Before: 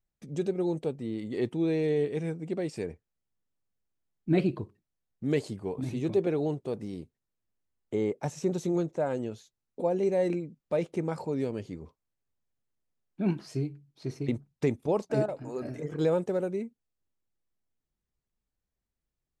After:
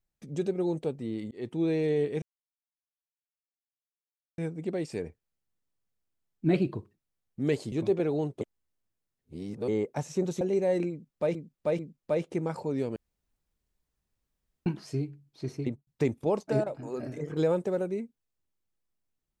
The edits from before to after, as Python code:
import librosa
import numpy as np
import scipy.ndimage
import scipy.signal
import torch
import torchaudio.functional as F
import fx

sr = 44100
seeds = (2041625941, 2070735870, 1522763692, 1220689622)

y = fx.studio_fade_out(x, sr, start_s=14.21, length_s=0.28)
y = fx.edit(y, sr, fx.fade_in_span(start_s=1.31, length_s=0.28),
    fx.insert_silence(at_s=2.22, length_s=2.16),
    fx.cut(start_s=5.56, length_s=0.43),
    fx.reverse_span(start_s=6.68, length_s=1.27),
    fx.cut(start_s=8.68, length_s=1.23),
    fx.repeat(start_s=10.41, length_s=0.44, count=3),
    fx.room_tone_fill(start_s=11.58, length_s=1.7), tone=tone)